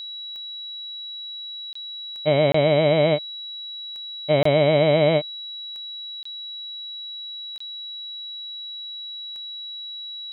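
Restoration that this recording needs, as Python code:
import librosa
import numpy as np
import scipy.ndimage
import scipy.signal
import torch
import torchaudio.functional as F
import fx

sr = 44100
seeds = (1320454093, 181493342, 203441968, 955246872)

y = fx.fix_declick_ar(x, sr, threshold=10.0)
y = fx.notch(y, sr, hz=3900.0, q=30.0)
y = fx.fix_interpolate(y, sr, at_s=(1.73, 2.52, 4.43, 6.23, 7.58), length_ms=24.0)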